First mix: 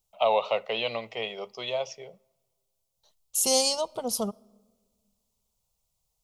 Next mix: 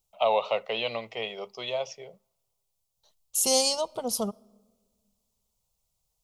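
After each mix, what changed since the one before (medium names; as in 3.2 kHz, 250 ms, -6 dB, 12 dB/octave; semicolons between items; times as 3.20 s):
first voice: send -9.5 dB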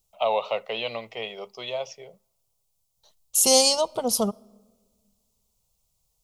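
second voice +5.5 dB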